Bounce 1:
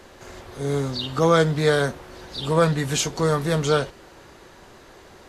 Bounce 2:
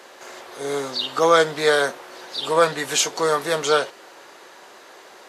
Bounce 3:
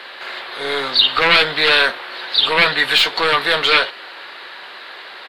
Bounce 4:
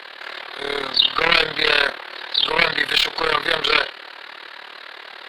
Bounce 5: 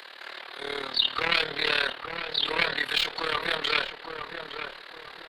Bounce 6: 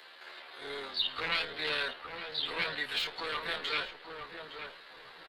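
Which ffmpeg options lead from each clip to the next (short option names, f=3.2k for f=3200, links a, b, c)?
-af "highpass=480,volume=4.5dB"
-af "aeval=exprs='0.75*sin(PI/2*3.98*val(0)/0.75)':c=same,aeval=exprs='0.794*(cos(1*acos(clip(val(0)/0.794,-1,1)))-cos(1*PI/2))+0.112*(cos(2*acos(clip(val(0)/0.794,-1,1)))-cos(2*PI/2))':c=same,firequalizer=gain_entry='entry(360,0);entry(1600,12);entry(4200,14);entry(6100,-14);entry(9000,-5)':delay=0.05:min_phase=1,volume=-14.5dB"
-af "areverse,acompressor=mode=upward:threshold=-30dB:ratio=2.5,areverse,tremolo=f=37:d=0.857"
-filter_complex "[0:a]acrossover=split=160|1300|5000[a][b][c][d];[b]aeval=exprs='clip(val(0),-1,0.0596)':c=same[e];[d]acompressor=mode=upward:threshold=-43dB:ratio=2.5[f];[a][e][c][f]amix=inputs=4:normalize=0,asplit=2[g][h];[h]adelay=862,lowpass=f=1.4k:p=1,volume=-6dB,asplit=2[i][j];[j]adelay=862,lowpass=f=1.4k:p=1,volume=0.35,asplit=2[k][l];[l]adelay=862,lowpass=f=1.4k:p=1,volume=0.35,asplit=2[m][n];[n]adelay=862,lowpass=f=1.4k:p=1,volume=0.35[o];[g][i][k][m][o]amix=inputs=5:normalize=0,volume=-8dB"
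-filter_complex "[0:a]asplit=2[a][b];[b]adelay=11.6,afreqshift=-2.8[c];[a][c]amix=inputs=2:normalize=1,volume=-4.5dB"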